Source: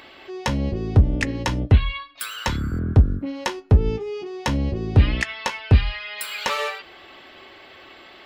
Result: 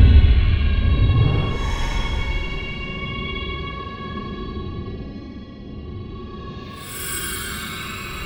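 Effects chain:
feedback delay that plays each chunk backwards 699 ms, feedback 66%, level −6.5 dB
extreme stretch with random phases 15×, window 0.05 s, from 0:01.74
comb and all-pass reverb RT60 3.8 s, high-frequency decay 0.8×, pre-delay 40 ms, DRR 10 dB
level −1 dB

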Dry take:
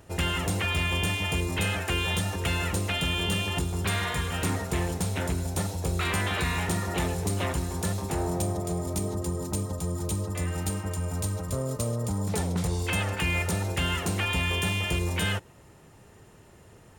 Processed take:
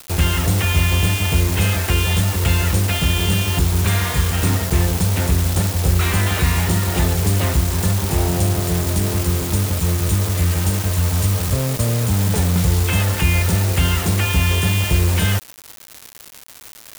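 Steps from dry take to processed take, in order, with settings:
low-shelf EQ 140 Hz +11.5 dB
background noise white −39 dBFS
bit reduction 5 bits
level +5 dB

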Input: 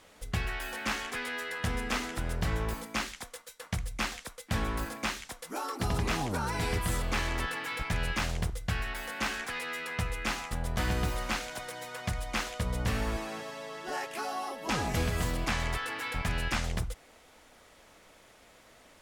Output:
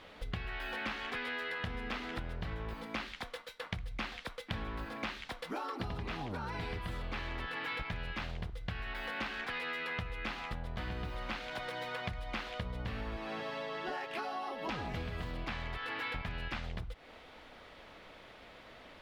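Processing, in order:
parametric band 10,000 Hz −5 dB 2.2 octaves
downward compressor 10 to 1, threshold −40 dBFS, peak gain reduction 15 dB
high shelf with overshoot 5,300 Hz −10.5 dB, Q 1.5
level +4 dB

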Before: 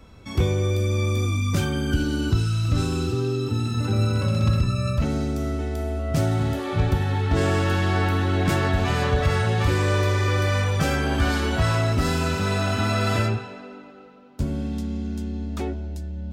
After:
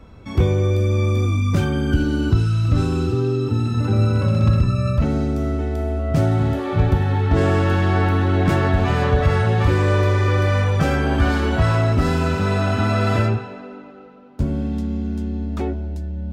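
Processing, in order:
high-shelf EQ 3,000 Hz −11 dB
level +4.5 dB

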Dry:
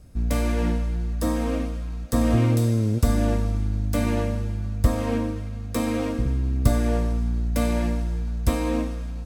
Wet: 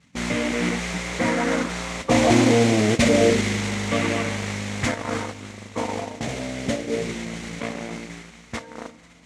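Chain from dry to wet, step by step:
spectral magnitudes quantised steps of 30 dB
source passing by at 0:02.59, 7 m/s, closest 6.1 metres
reverb reduction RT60 0.74 s
spectral tilt −3 dB per octave
in parallel at −6.5 dB: fuzz pedal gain 33 dB, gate −31 dBFS
on the sum: auto-filter low-pass saw down 0.28 Hz 390–4,300 Hz
on a send at −16 dB: convolution reverb RT60 2.0 s, pre-delay 26 ms
on the sum: noise that follows the level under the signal 11 dB
loudspeaker in its box 190–7,100 Hz, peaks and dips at 320 Hz −4 dB, 2,100 Hz +10 dB, 4,900 Hz −5 dB
level −1.5 dB

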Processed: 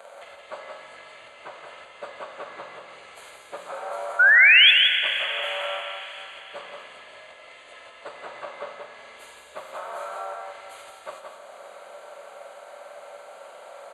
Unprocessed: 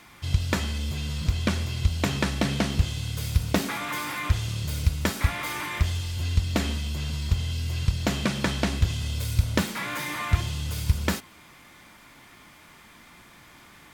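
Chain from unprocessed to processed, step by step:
phase-vocoder pitch shift without resampling −7.5 semitones
dynamic equaliser 1,200 Hz, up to +8 dB, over −50 dBFS, Q 1.8
downward compressor 6 to 1, threshold −41 dBFS, peak gain reduction 22.5 dB
high-pass with resonance 570 Hz, resonance Q 6.8
sound drawn into the spectrogram rise, 0:04.19–0:04.71, 1,400–3,500 Hz −17 dBFS
Butterworth band-reject 5,400 Hz, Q 3.2
single-tap delay 174 ms −5 dB
four-comb reverb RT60 4 s, combs from 30 ms, DRR 6 dB
level +2.5 dB

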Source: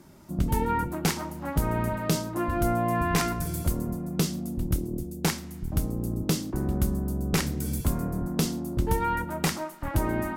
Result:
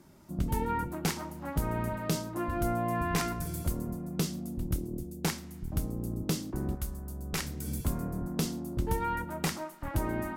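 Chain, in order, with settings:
0:06.74–0:07.66: parametric band 240 Hz −14.5 dB → −3.5 dB 2.9 octaves
level −5 dB

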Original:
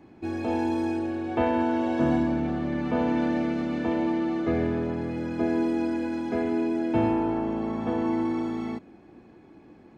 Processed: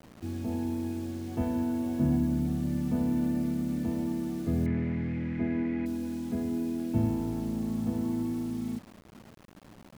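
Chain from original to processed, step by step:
drawn EQ curve 210 Hz 0 dB, 340 Hz −13 dB, 1,200 Hz −19 dB
bit reduction 9 bits
0:04.66–0:05.86: low-pass with resonance 2,100 Hz, resonance Q 7.2
level +3 dB

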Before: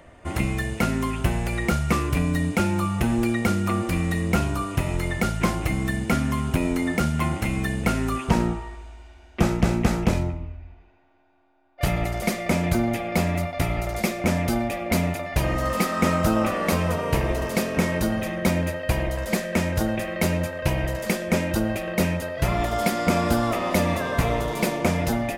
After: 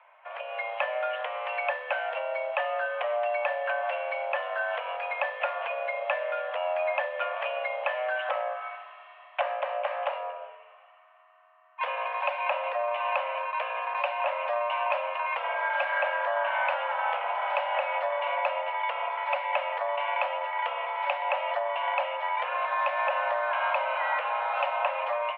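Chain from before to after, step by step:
downward compressor, threshold −28 dBFS, peak gain reduction 14 dB
single-sideband voice off tune +360 Hz 210–2,600 Hz
automatic gain control gain up to 12 dB
level −7 dB

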